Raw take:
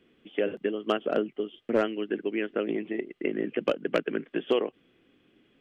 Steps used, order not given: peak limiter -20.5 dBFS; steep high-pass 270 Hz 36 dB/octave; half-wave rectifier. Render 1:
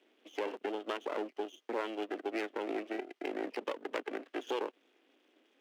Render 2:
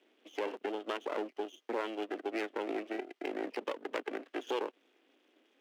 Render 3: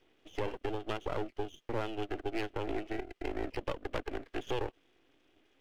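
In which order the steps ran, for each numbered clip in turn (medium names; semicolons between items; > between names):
peak limiter > half-wave rectifier > steep high-pass; half-wave rectifier > peak limiter > steep high-pass; peak limiter > steep high-pass > half-wave rectifier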